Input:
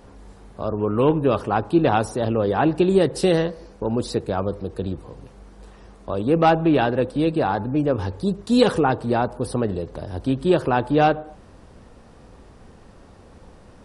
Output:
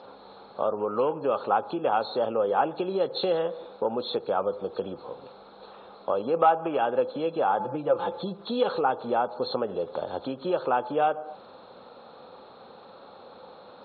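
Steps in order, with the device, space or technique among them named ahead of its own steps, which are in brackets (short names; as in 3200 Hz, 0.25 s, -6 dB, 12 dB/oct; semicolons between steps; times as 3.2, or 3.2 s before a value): high shelf 5300 Hz +5.5 dB; 6.34–6.77 bell 1100 Hz +5.5 dB 2.5 oct; 7.59–8.48 comb 5.9 ms, depth 92%; hearing aid with frequency lowering (nonlinear frequency compression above 3200 Hz 4:1; compressor 4:1, threshold -25 dBFS, peak gain reduction 15 dB; speaker cabinet 290–5500 Hz, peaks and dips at 310 Hz -5 dB, 530 Hz +7 dB, 830 Hz +7 dB, 1300 Hz +8 dB, 1900 Hz -9 dB, 3300 Hz -4 dB)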